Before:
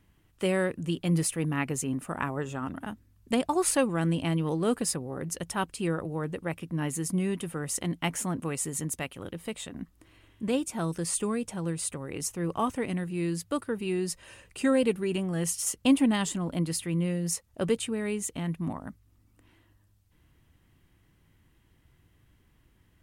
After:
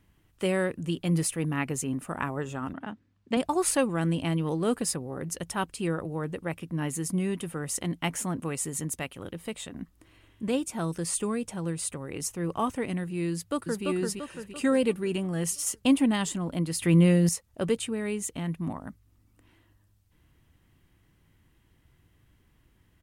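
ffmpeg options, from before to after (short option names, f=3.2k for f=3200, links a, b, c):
-filter_complex "[0:a]asettb=1/sr,asplit=3[a][b][c];[a]atrim=end=2.734[d];[b]atrim=start=2.73:end=3.37,asetpts=PTS-STARTPTS,afade=t=in:d=0.004:c=qsin,afade=t=out:st=0.636:d=0.004:c=qsin,highpass=140,lowpass=4.1k[e];[c]atrim=start=3.366[f];[d][e]acrossfade=d=0.004:c1=hsin:c2=qsin[g];[g][f]acrossfade=d=0.004:c1=qsin:c2=hsin,asplit=2[h][i];[i]afade=t=in:st=13.32:d=0.01,afade=t=out:st=13.85:d=0.01,aecho=0:1:340|680|1020|1360|1700|2040|2380:0.707946|0.353973|0.176986|0.0884932|0.0442466|0.0221233|0.0110617[j];[h][j]amix=inputs=2:normalize=0,asplit=3[k][l][m];[k]atrim=end=16.822[n];[l]atrim=start=16.818:end=17.292,asetpts=PTS-STARTPTS,volume=9dB[o];[m]atrim=start=17.288[p];[n][o]acrossfade=d=0.004:c1=hsin:c2=hsin[q];[q][p]acrossfade=d=0.004:c1=hsin:c2=hsin"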